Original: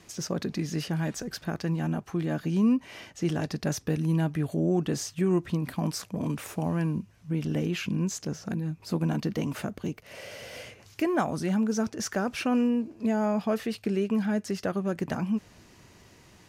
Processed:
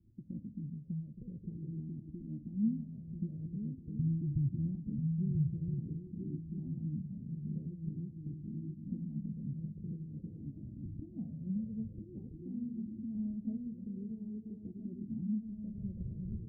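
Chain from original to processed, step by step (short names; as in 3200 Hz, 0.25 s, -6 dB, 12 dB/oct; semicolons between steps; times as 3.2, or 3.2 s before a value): recorder AGC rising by 43 dB/s; inverse Chebyshev low-pass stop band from 1500 Hz, stop band 80 dB; 3.99–4.75 resonant low shelf 170 Hz +10.5 dB, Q 3; 8.01–8.47 compressor, threshold -29 dBFS, peak gain reduction 4.5 dB; tremolo triangle 3.5 Hz, depth 55%; swung echo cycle 1.32 s, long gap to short 3:1, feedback 37%, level -4 dB; on a send at -10 dB: reverb, pre-delay 3 ms; on the sum: cascading flanger falling 0.47 Hz; gain -3 dB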